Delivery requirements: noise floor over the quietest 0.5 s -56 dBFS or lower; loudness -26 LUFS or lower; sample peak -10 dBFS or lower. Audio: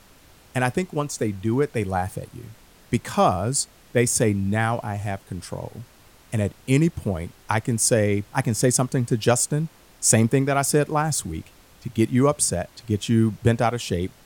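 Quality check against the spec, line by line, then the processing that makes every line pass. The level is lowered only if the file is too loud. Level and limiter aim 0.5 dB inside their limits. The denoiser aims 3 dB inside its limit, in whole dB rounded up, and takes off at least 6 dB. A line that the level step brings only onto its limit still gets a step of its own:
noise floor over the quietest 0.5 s -52 dBFS: fail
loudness -23.0 LUFS: fail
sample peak -3.5 dBFS: fail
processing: noise reduction 6 dB, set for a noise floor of -52 dBFS; trim -3.5 dB; peak limiter -10.5 dBFS

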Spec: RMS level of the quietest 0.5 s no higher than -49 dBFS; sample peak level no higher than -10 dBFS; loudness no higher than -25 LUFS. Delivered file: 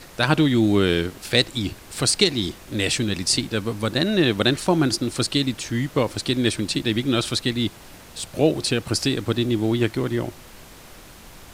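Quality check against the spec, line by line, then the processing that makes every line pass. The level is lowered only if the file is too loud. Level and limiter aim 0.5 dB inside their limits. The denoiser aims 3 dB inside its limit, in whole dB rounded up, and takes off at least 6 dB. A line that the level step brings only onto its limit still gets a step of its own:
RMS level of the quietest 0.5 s -44 dBFS: fail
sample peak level -3.5 dBFS: fail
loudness -22.0 LUFS: fail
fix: noise reduction 6 dB, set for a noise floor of -44 dBFS; trim -3.5 dB; peak limiter -10.5 dBFS

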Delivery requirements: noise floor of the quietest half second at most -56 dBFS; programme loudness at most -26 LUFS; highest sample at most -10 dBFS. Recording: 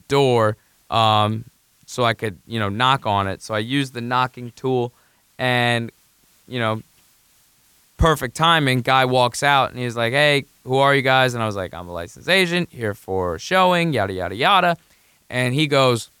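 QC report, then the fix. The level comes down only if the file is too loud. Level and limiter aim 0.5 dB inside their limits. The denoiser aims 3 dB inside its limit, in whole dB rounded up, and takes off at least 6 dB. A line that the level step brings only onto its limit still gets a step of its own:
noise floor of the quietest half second -58 dBFS: pass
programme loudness -19.0 LUFS: fail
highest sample -1.5 dBFS: fail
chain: trim -7.5 dB; peak limiter -10.5 dBFS

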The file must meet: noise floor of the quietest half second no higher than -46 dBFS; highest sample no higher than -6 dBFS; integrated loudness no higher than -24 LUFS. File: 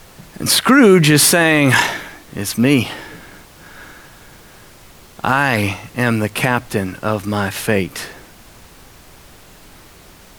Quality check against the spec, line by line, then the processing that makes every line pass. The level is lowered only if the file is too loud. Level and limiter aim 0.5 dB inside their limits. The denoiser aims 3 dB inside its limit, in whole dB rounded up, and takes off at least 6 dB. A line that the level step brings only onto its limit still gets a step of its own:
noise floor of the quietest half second -43 dBFS: fail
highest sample -1.5 dBFS: fail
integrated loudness -15.0 LUFS: fail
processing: trim -9.5 dB

